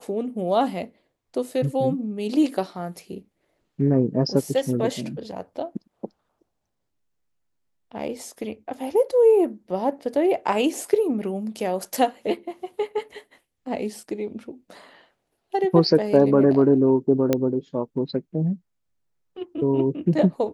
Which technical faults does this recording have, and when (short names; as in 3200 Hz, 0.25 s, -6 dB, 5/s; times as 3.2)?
17.33 pop -7 dBFS